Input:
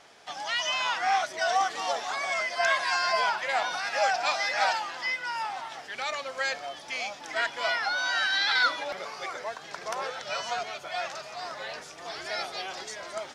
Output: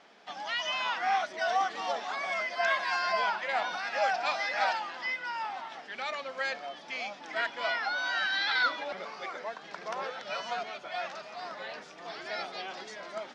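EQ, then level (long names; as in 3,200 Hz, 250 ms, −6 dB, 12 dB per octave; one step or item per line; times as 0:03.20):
low-pass filter 4,300 Hz 12 dB per octave
low shelf with overshoot 150 Hz −7.5 dB, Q 3
−3.0 dB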